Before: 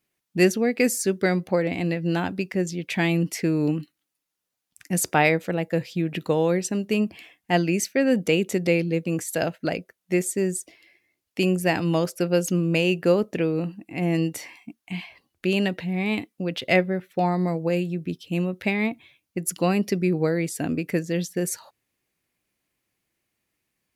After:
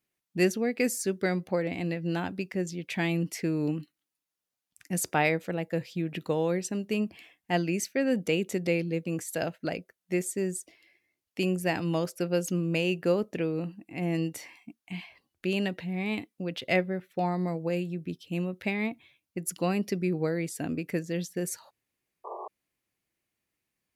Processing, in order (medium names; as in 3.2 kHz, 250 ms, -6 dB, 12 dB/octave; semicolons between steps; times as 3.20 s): painted sound noise, 22.24–22.48 s, 340–1200 Hz -33 dBFS; trim -6 dB